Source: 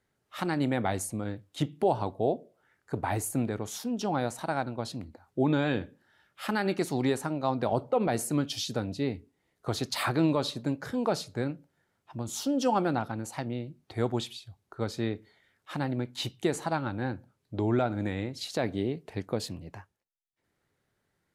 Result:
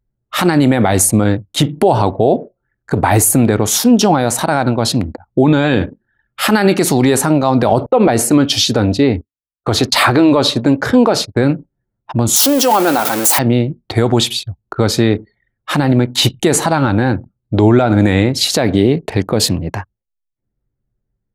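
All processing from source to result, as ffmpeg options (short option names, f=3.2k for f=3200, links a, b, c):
-filter_complex "[0:a]asettb=1/sr,asplit=3[a][b][c];[a]atrim=end=7.864[d];[b]atrim=start=7.86:end=11.44,asetpts=PTS-STARTPTS,afade=t=in:d=0.004:c=qsin,afade=t=out:st=3.576:d=0.004:c=qsin,lowpass=f=3.9k:p=1,agate=range=-33dB:threshold=-45dB:ratio=3:release=100:detection=peak,equalizer=f=160:w=5.7:g=-13.5[e];[c]atrim=start=11.436[f];[d][e]acrossfade=d=0.004:c1=hsin:c2=qsin[g];[g][f]acrossfade=d=0.004:c1=qsin:c2=hsin,asettb=1/sr,asplit=3[h][i][j];[h]atrim=end=12.364[k];[i]atrim=start=12.36:end=13.39,asetpts=PTS-STARTPTS,afade=t=in:d=0.004:c=qsin,afade=t=out:st=1.026:d=0.004:c=qsin,aeval=exprs='val(0)+0.5*0.0178*sgn(val(0))':c=same,highpass=360,highshelf=f=10k:g=11.5[l];[j]atrim=start=13.386[m];[k][l]acrossfade=d=0.004:c1=hsin:c2=qsin[n];[n][m]acrossfade=d=0.004:c1=qsin:c2=hsin,anlmdn=0.00158,highshelf=f=8.4k:g=5.5,alimiter=level_in=23.5dB:limit=-1dB:release=50:level=0:latency=1,volume=-1dB"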